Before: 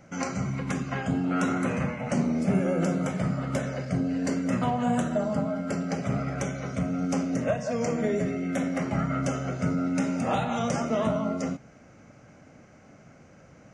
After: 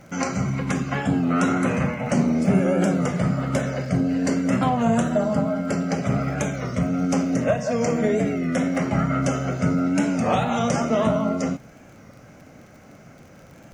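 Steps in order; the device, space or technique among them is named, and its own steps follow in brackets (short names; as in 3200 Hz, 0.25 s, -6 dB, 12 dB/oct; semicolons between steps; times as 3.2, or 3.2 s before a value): warped LP (record warp 33 1/3 rpm, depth 100 cents; crackle 38/s -45 dBFS; pink noise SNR 42 dB); gain +5.5 dB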